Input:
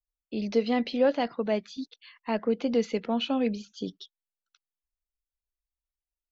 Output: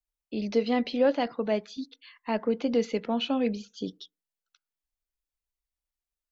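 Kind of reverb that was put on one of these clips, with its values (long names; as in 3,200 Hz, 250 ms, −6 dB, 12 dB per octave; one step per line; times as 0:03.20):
feedback delay network reverb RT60 0.36 s, low-frequency decay 0.95×, high-frequency decay 0.3×, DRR 19.5 dB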